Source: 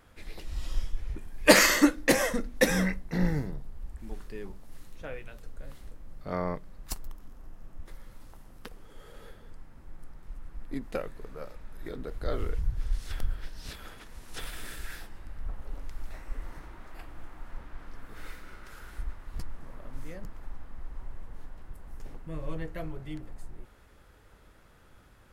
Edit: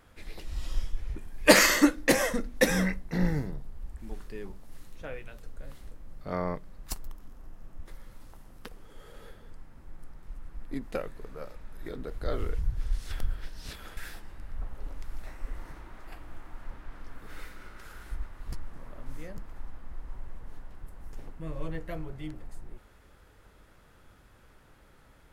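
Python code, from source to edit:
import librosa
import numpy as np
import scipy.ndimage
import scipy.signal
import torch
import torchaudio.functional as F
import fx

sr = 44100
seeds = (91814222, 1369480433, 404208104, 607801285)

y = fx.edit(x, sr, fx.cut(start_s=13.97, length_s=0.87), tone=tone)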